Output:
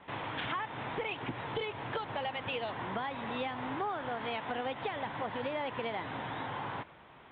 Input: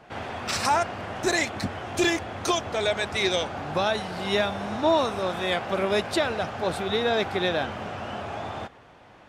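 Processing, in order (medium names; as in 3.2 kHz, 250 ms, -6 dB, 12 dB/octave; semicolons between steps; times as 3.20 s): steep low-pass 2.9 kHz 96 dB/octave; compression 6:1, threshold -29 dBFS, peak gain reduction 11 dB; tape speed +27%; trim -4 dB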